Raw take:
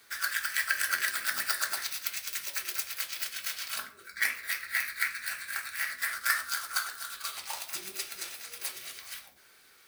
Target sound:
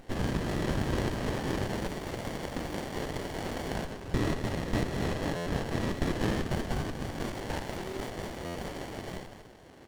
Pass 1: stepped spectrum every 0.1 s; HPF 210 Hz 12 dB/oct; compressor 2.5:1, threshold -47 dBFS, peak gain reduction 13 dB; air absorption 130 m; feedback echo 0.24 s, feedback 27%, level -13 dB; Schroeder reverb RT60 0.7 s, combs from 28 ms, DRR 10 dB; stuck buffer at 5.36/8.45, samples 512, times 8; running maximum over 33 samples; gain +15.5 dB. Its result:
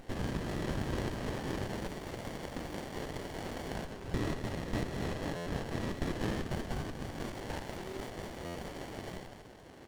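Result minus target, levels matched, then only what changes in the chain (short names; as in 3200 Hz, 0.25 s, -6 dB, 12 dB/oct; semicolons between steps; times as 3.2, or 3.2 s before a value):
compressor: peak gain reduction +5 dB
change: compressor 2.5:1, threshold -38.5 dBFS, peak gain reduction 7.5 dB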